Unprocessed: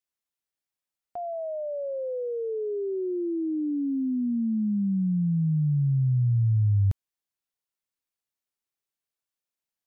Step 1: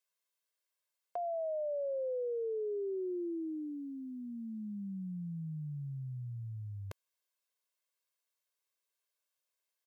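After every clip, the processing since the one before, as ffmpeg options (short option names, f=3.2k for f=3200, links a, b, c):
-af "highpass=430,aecho=1:1:1.9:0.62,acompressor=threshold=-36dB:ratio=6,volume=1dB"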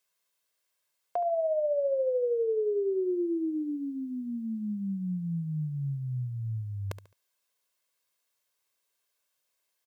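-af "aecho=1:1:71|142|213:0.224|0.0716|0.0229,volume=8dB"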